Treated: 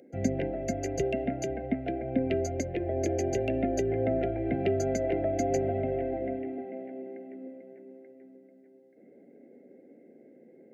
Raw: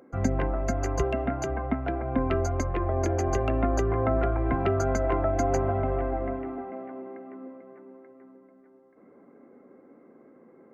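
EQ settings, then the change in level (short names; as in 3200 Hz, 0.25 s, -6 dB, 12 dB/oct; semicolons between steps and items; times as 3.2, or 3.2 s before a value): HPF 120 Hz 12 dB/oct; Chebyshev band-stop 610–2100 Hz, order 2; 0.0 dB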